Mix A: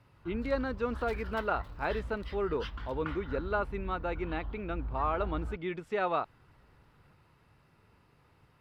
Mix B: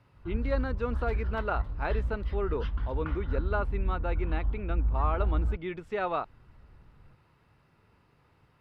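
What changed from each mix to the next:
background: add tilt -2.5 dB/oct; master: add bell 13000 Hz -4.5 dB 1.6 oct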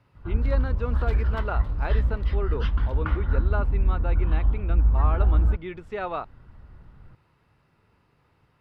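background +8.0 dB

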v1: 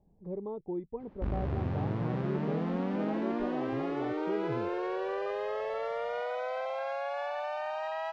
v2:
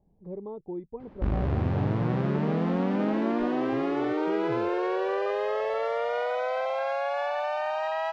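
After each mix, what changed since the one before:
background +6.0 dB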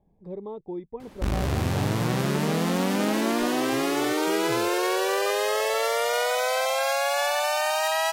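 master: remove tape spacing loss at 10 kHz 44 dB

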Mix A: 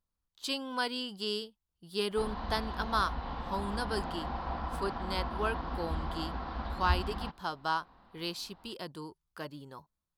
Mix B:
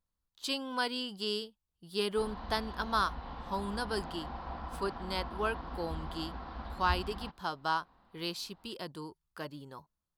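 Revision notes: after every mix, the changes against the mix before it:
background -5.0 dB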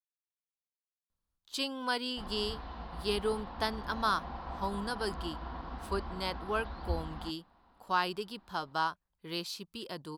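speech: entry +1.10 s

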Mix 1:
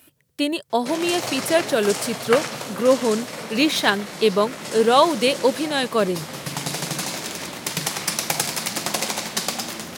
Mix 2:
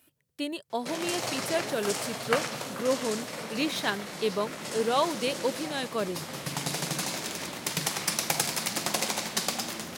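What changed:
speech -10.5 dB; background -4.5 dB

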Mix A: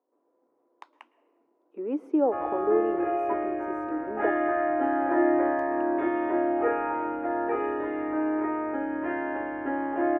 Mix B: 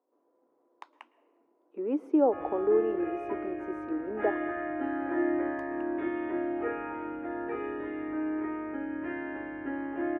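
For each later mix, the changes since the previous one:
background: add bell 770 Hz -11.5 dB 2 oct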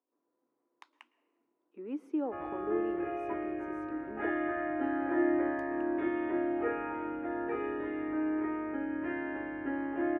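speech: add bell 590 Hz -14 dB 2.2 oct

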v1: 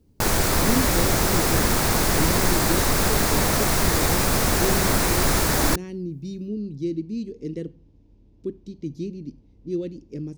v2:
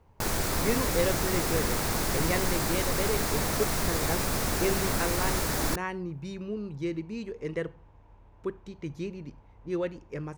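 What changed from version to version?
speech: remove EQ curve 110 Hz 0 dB, 280 Hz +10 dB, 940 Hz -20 dB, 1500 Hz -19 dB, 4900 Hz +5 dB, 7600 Hz -2 dB; background -8.0 dB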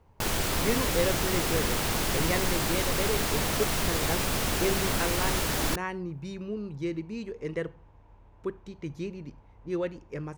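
background: add bell 3000 Hz +7.5 dB 0.59 oct

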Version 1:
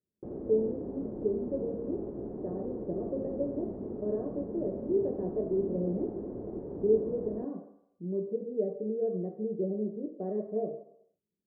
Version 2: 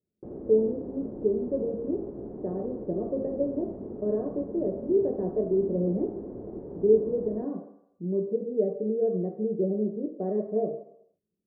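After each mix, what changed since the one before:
speech +5.0 dB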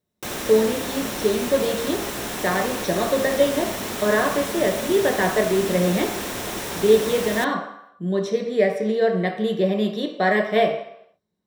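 master: remove ladder low-pass 510 Hz, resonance 35%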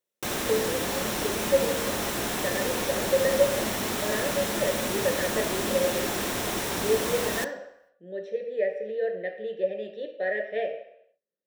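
speech: add vowel filter e

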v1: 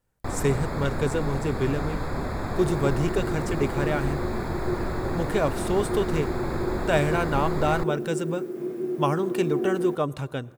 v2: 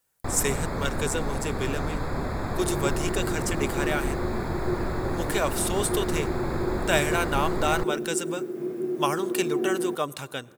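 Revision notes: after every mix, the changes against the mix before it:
speech: add tilt +3.5 dB/oct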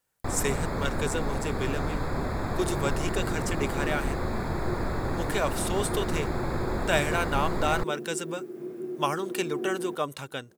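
speech: add high shelf 6300 Hz -6 dB; second sound -5.5 dB; reverb: off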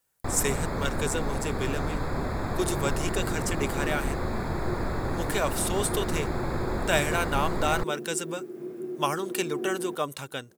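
speech: add high shelf 6300 Hz +6 dB

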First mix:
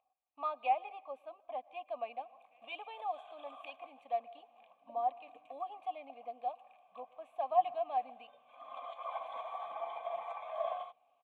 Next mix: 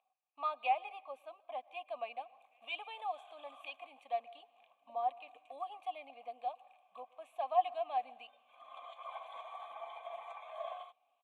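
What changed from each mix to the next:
background -5.0 dB; master: add tilt +3 dB/oct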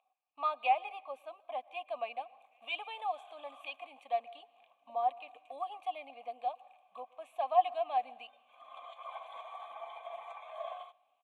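speech +3.5 dB; background: send on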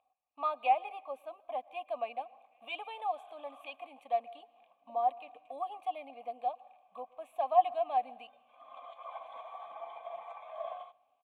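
speech: remove air absorption 68 m; master: add tilt -3 dB/oct

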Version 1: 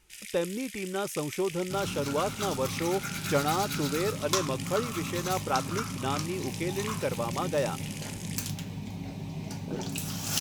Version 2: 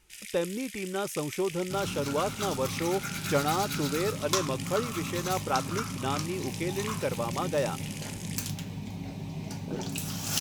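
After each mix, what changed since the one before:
none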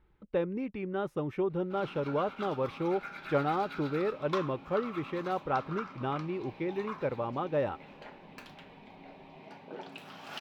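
first sound: muted; second sound: add HPF 520 Hz 12 dB/oct; master: add air absorption 450 m

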